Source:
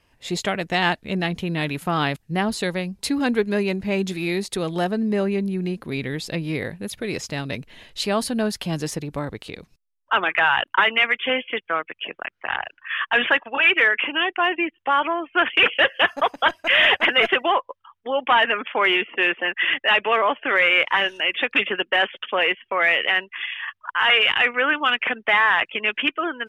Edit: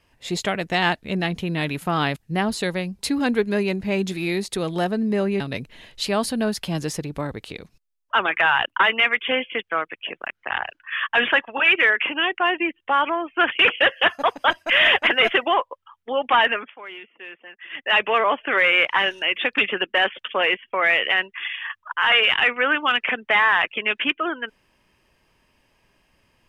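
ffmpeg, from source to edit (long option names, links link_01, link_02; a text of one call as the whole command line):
ffmpeg -i in.wav -filter_complex "[0:a]asplit=4[link_01][link_02][link_03][link_04];[link_01]atrim=end=5.402[link_05];[link_02]atrim=start=7.378:end=18.72,asetpts=PTS-STARTPTS,afade=type=out:start_time=11.082:duration=0.26:silence=0.112202[link_06];[link_03]atrim=start=18.72:end=19.68,asetpts=PTS-STARTPTS,volume=-19dB[link_07];[link_04]atrim=start=19.68,asetpts=PTS-STARTPTS,afade=type=in:duration=0.26:silence=0.112202[link_08];[link_06][link_07][link_08]concat=n=3:v=0:a=1[link_09];[link_05][link_09]acrossfade=duration=0.004:curve1=hsin:curve2=hsin" out.wav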